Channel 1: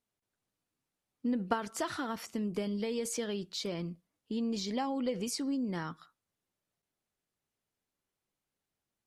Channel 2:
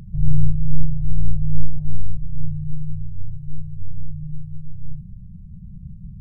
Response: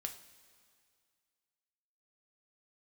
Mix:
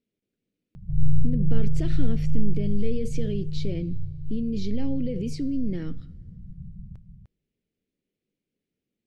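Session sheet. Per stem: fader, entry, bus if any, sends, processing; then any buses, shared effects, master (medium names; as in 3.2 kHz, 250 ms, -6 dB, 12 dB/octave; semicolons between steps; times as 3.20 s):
-1.0 dB, 0.00 s, send -6 dB, no echo send, FFT filter 100 Hz 0 dB, 230 Hz +10 dB, 480 Hz +6 dB, 970 Hz -21 dB, 2.3 kHz +1 dB, 9 kHz -7 dB; peak limiter -25 dBFS, peak gain reduction 11 dB
-5.5 dB, 0.75 s, send -16 dB, echo send -5.5 dB, none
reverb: on, pre-delay 3 ms
echo: delay 301 ms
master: treble shelf 6.6 kHz -9.5 dB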